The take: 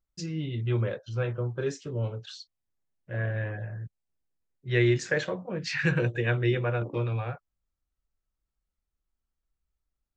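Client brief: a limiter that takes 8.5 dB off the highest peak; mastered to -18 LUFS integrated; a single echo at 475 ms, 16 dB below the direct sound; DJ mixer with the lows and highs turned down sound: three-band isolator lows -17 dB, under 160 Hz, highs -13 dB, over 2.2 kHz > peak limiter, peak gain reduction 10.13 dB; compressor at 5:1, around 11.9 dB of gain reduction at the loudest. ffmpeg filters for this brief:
-filter_complex "[0:a]acompressor=threshold=0.0251:ratio=5,alimiter=level_in=1.58:limit=0.0631:level=0:latency=1,volume=0.631,acrossover=split=160 2200:gain=0.141 1 0.224[s0][s1][s2];[s0][s1][s2]amix=inputs=3:normalize=0,aecho=1:1:475:0.158,volume=26.6,alimiter=limit=0.355:level=0:latency=1"

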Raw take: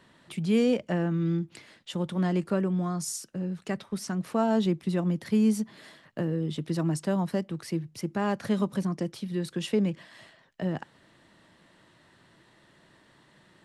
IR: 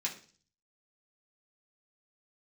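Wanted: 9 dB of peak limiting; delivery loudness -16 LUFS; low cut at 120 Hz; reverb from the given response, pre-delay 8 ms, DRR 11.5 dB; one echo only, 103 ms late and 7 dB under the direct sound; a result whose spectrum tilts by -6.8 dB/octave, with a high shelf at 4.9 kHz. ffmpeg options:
-filter_complex "[0:a]highpass=120,highshelf=f=4900:g=-3,alimiter=limit=0.0708:level=0:latency=1,aecho=1:1:103:0.447,asplit=2[s0][s1];[1:a]atrim=start_sample=2205,adelay=8[s2];[s1][s2]afir=irnorm=-1:irlink=0,volume=0.188[s3];[s0][s3]amix=inputs=2:normalize=0,volume=5.96"

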